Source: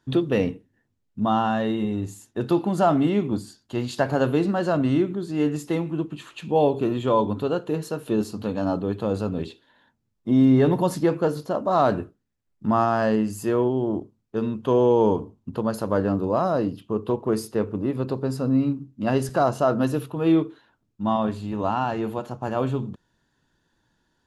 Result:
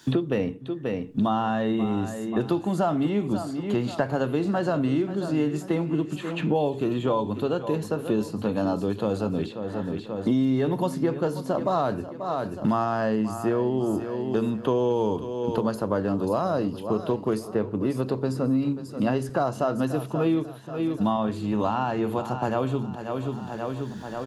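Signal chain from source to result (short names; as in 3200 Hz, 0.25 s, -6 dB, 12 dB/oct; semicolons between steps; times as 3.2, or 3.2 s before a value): feedback echo 0.535 s, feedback 34%, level -15 dB; three-band squash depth 100%; gain -3 dB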